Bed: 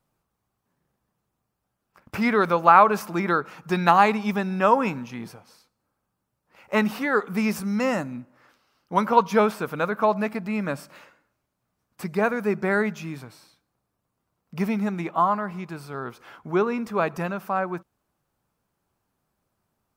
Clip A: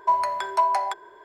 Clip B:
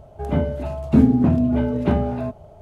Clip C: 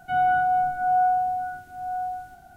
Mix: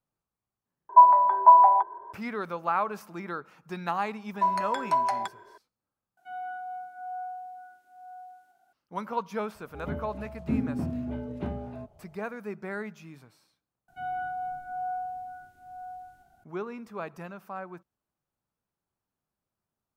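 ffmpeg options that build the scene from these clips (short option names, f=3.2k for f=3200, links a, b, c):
-filter_complex "[1:a]asplit=2[a][b];[3:a]asplit=2[c][d];[0:a]volume=-13dB[e];[a]lowpass=f=920:t=q:w=5[f];[c]highpass=390[g];[e]asplit=4[h][i][j][k];[h]atrim=end=0.894[l];[f]atrim=end=1.24,asetpts=PTS-STARTPTS,volume=-4.5dB[m];[i]atrim=start=2.126:end=6.174[n];[g]atrim=end=2.56,asetpts=PTS-STARTPTS,volume=-16dB[o];[j]atrim=start=8.726:end=13.884[p];[d]atrim=end=2.56,asetpts=PTS-STARTPTS,volume=-12.5dB[q];[k]atrim=start=16.436[r];[b]atrim=end=1.24,asetpts=PTS-STARTPTS,volume=-4dB,afade=t=in:d=0.004:c=hsin,afade=t=out:st=1.236:d=0.004:c=hsin,adelay=4340[s];[2:a]atrim=end=2.61,asetpts=PTS-STARTPTS,volume=-14.5dB,afade=t=in:d=0.004:c=hsin,afade=t=out:st=2.606:d=0.004:c=hsin,adelay=9550[t];[l][m]acrossfade=d=0.004:c1=hsin:c2=hsin[u];[u][n]acrossfade=d=0.004:c1=hsin:c2=hsin[v];[v][o]acrossfade=d=0.004:c1=hsin:c2=hsin[w];[w][p]acrossfade=d=0.004:c1=hsin:c2=hsin[x];[x][q]acrossfade=d=0.004:c1=hsin:c2=hsin[y];[y][r]acrossfade=d=0.004:c1=hsin:c2=hsin[z];[z][s][t]amix=inputs=3:normalize=0"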